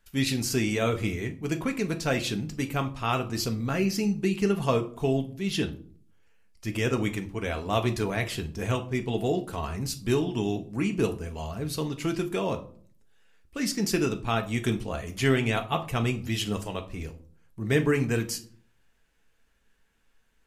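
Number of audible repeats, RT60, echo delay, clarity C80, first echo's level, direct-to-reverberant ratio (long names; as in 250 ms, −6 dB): no echo audible, 0.50 s, no echo audible, 20.0 dB, no echo audible, 5.5 dB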